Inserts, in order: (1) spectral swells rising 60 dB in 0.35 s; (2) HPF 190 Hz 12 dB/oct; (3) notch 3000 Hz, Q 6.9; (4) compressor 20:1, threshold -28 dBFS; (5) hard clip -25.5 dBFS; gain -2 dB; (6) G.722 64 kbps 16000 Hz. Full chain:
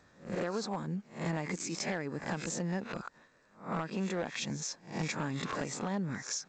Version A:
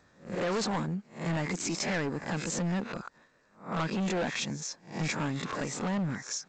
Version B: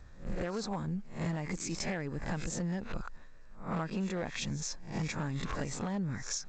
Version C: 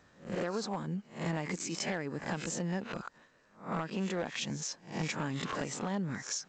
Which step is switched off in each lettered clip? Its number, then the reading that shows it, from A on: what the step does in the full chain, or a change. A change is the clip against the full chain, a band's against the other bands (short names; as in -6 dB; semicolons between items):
4, mean gain reduction 5.0 dB; 2, 125 Hz band +3.5 dB; 3, crest factor change +2.5 dB